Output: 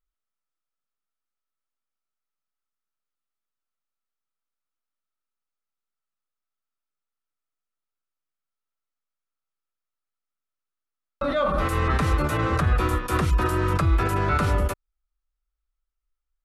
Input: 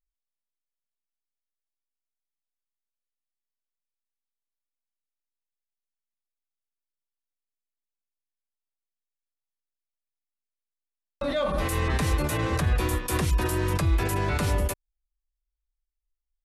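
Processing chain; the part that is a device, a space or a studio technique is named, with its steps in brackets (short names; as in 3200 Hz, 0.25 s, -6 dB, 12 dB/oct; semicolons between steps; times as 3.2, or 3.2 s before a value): inside a helmet (high shelf 4300 Hz -10 dB; small resonant body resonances 1300 Hz, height 13 dB, ringing for 20 ms); gain +2.5 dB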